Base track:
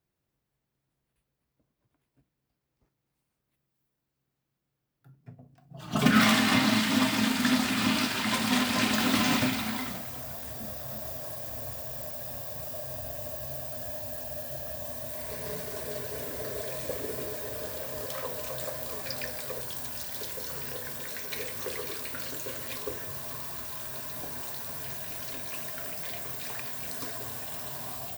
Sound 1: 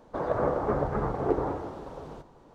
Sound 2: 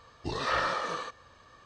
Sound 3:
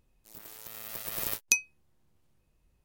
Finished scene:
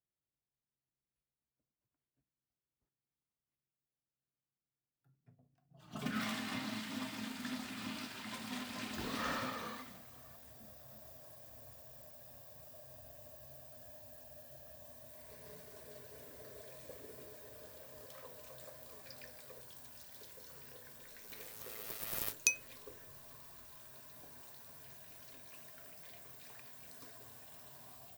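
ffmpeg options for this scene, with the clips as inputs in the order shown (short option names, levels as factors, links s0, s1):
-filter_complex "[0:a]volume=0.133[s0];[2:a]atrim=end=1.65,asetpts=PTS-STARTPTS,volume=0.266,afade=t=in:d=0.004:c=hsin,afade=t=out:st=1.646:d=0.004:c=hsin,adelay=8720[s1];[3:a]atrim=end=2.84,asetpts=PTS-STARTPTS,volume=0.501,afade=t=in:d=0.004:c=hsin,afade=t=out:st=2.836:d=0.004:c=hsin,adelay=20950[s2];[s0][s1][s2]amix=inputs=3:normalize=0"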